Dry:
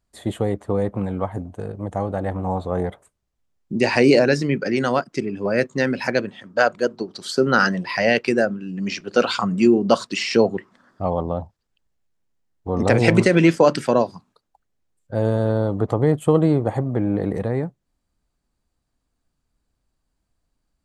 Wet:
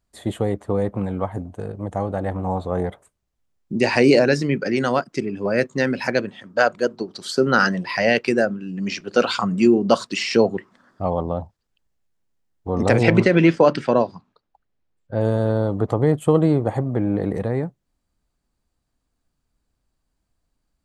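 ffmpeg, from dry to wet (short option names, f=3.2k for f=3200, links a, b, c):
-filter_complex "[0:a]asettb=1/sr,asplit=3[a][b][c];[a]atrim=end=13.034[d];[b]atrim=start=13.03:end=15.21,asetpts=PTS-STARTPTS,afade=t=in:d=0.004:c=qsin,afade=t=out:st=2.176:d=0.004:c=qsin,lowpass=4.1k[e];[c]atrim=start=15.206[f];[d][e]acrossfade=d=0.004:c1=hsin:c2=qsin[g];[g][f]acrossfade=d=0.004:c1=qsin:c2=hsin"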